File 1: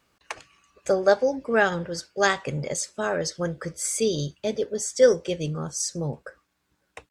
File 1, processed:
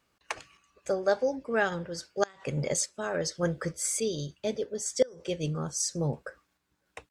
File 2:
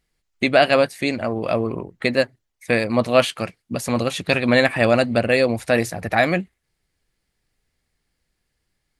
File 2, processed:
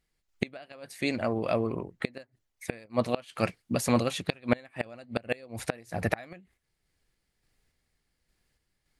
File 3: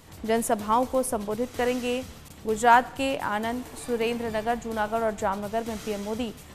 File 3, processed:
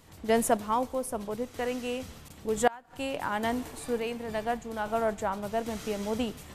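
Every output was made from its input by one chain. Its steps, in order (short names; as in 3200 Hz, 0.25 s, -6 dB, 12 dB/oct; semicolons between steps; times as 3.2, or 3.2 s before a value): random-step tremolo; flipped gate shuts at -11 dBFS, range -28 dB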